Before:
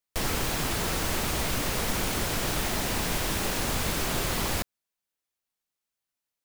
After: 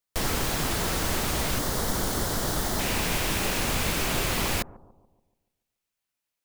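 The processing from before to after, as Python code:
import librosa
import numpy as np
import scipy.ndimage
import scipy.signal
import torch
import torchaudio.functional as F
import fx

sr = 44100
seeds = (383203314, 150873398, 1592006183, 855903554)

y = fx.peak_eq(x, sr, hz=2500.0, db=fx.steps((0.0, -2.0), (1.59, -12.0), (2.79, 3.5)), octaves=0.52)
y = fx.echo_bbd(y, sr, ms=143, stages=1024, feedback_pct=47, wet_db=-18.0)
y = y * 10.0 ** (1.5 / 20.0)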